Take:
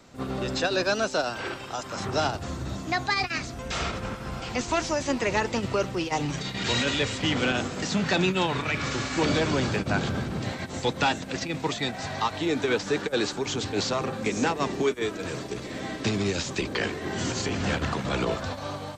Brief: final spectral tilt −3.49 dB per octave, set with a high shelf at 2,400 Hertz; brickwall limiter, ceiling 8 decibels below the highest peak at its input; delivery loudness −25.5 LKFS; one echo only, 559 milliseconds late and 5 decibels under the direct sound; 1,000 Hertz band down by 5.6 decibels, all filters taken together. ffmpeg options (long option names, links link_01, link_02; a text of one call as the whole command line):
ffmpeg -i in.wav -af "equalizer=frequency=1000:width_type=o:gain=-9,highshelf=frequency=2400:gain=6,alimiter=limit=-19.5dB:level=0:latency=1,aecho=1:1:559:0.562,volume=2.5dB" out.wav